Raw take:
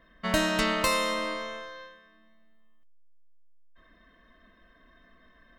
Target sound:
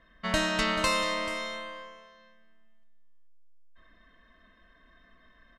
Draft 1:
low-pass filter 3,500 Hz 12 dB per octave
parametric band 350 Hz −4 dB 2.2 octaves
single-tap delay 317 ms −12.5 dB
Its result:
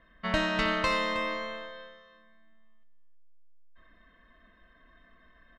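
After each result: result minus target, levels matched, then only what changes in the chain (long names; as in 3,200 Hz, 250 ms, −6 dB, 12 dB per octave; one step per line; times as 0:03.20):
8,000 Hz band −11.0 dB; echo 119 ms early
change: low-pass filter 8,700 Hz 12 dB per octave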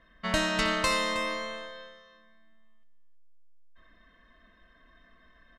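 echo 119 ms early
change: single-tap delay 436 ms −12.5 dB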